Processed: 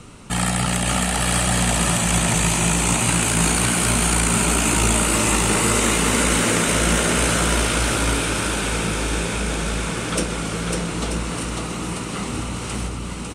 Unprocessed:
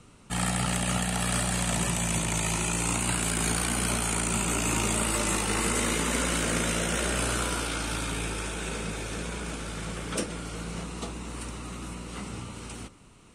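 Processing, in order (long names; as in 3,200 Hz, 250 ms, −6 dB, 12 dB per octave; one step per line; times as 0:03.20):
in parallel at +2.5 dB: downward compressor, threshold −39 dBFS, peak gain reduction 14.5 dB
0:06.20–0:06.77: on the sum: surface crackle 110 per second −34 dBFS
bouncing-ball delay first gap 550 ms, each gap 0.7×, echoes 5
level +4.5 dB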